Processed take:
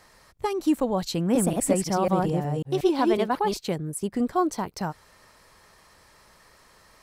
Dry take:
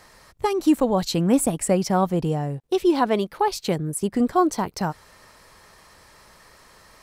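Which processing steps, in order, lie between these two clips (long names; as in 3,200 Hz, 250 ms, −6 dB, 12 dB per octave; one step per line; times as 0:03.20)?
0:01.17–0:03.57: delay that plays each chunk backwards 182 ms, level −0.5 dB
level −4.5 dB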